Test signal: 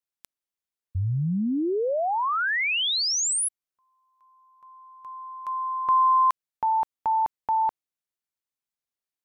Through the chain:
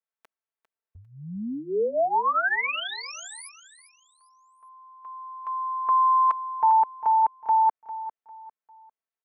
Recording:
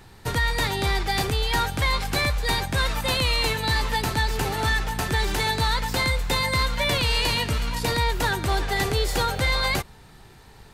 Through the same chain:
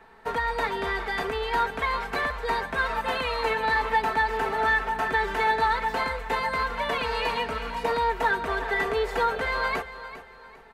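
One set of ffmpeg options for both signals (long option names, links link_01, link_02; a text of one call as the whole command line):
ffmpeg -i in.wav -filter_complex "[0:a]acrossover=split=370 2300:gain=0.178 1 0.1[link_01][link_02][link_03];[link_01][link_02][link_03]amix=inputs=3:normalize=0,aecho=1:1:4.5:0.83,aecho=1:1:400|800|1200:0.211|0.0676|0.0216" out.wav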